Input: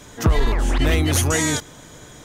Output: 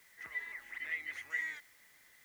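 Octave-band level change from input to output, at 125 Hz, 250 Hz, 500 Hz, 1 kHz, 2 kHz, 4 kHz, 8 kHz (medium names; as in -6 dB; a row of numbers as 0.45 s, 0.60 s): under -40 dB, under -40 dB, -39.0 dB, -30.0 dB, -10.0 dB, -28.0 dB, -36.0 dB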